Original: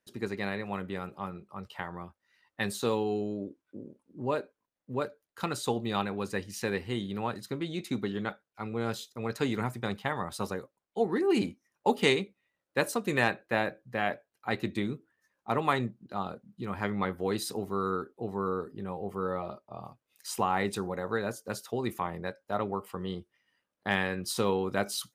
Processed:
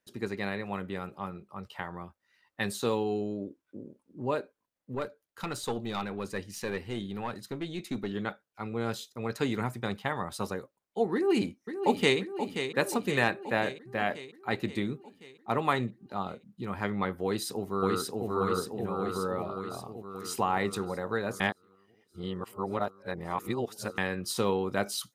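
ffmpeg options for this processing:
-filter_complex "[0:a]asettb=1/sr,asplit=3[a][b][c];[a]atrim=end=4.954[d];[b]atrim=start=4.95:end=8.11,asetpts=PTS-STARTPTS,afade=t=in:d=0.004:c=qsin,afade=t=out:st=3.156:d=0.004:c=qsin,aeval=exprs='(tanh(12.6*val(0)+0.4)-tanh(0.4))/12.6':c=same[e];[c]atrim=start=8.106[f];[d][e]acrossfade=d=0.004:c1=hsin:c2=qsin[g];[g][f]acrossfade=d=0.004:c1=qsin:c2=hsin,asplit=2[h][i];[i]afade=t=in:st=11.14:d=0.01,afade=t=out:st=12.19:d=0.01,aecho=0:1:530|1060|1590|2120|2650|3180|3710|4240|4770:0.375837|0.244294|0.158791|0.103214|0.0670893|0.0436081|0.0283452|0.0184244|0.0119759[j];[h][j]amix=inputs=2:normalize=0,asplit=2[k][l];[l]afade=t=in:st=17.24:d=0.01,afade=t=out:st=18.28:d=0.01,aecho=0:1:580|1160|1740|2320|2900|3480|4060|4640|5220|5800|6380:0.891251|0.579313|0.376554|0.24476|0.159094|0.103411|0.0672172|0.0436912|0.0283992|0.0184595|0.0119987[m];[k][m]amix=inputs=2:normalize=0,asplit=3[n][o][p];[n]atrim=end=21.402[q];[o]atrim=start=21.398:end=23.982,asetpts=PTS-STARTPTS,areverse[r];[p]atrim=start=23.978[s];[q][r]acrossfade=d=0.004:c1=hsin:c2=hsin[t];[t][s]acrossfade=d=0.004:c1=hsin:c2=hsin"

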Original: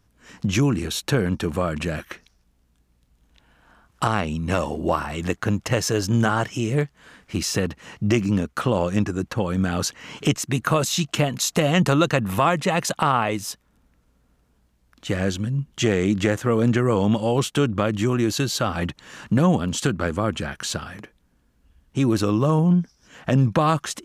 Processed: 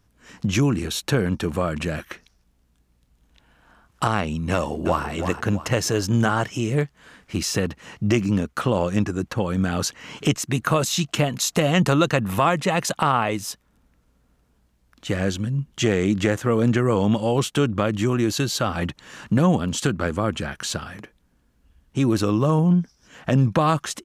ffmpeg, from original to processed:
-filter_complex "[0:a]asplit=2[a][b];[b]afade=t=in:st=4.52:d=0.01,afade=t=out:st=5.07:d=0.01,aecho=0:1:330|660|990|1320|1650:0.398107|0.159243|0.0636971|0.0254789|0.0101915[c];[a][c]amix=inputs=2:normalize=0"

